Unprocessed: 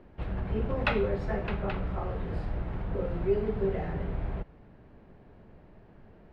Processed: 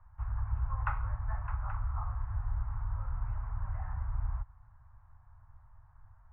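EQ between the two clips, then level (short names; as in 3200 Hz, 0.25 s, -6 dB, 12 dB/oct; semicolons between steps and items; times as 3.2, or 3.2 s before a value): Chebyshev band-stop 100–1000 Hz, order 3; LPF 1300 Hz 24 dB/oct; +1.0 dB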